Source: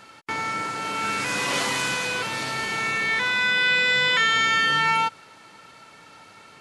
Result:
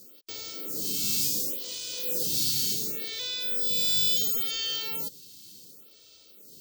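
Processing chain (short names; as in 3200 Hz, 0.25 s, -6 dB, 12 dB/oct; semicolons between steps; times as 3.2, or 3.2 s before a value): EQ curve 270 Hz 0 dB, 510 Hz -2 dB, 790 Hz -25 dB, 2000 Hz -22 dB, 3200 Hz +2 dB, 4900 Hz +11 dB; 0.68–2.74 negative-ratio compressor -26 dBFS, ratio -1; soft clip -16.5 dBFS, distortion -19 dB; careless resampling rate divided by 2×, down filtered, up zero stuff; photocell phaser 0.7 Hz; gain -2.5 dB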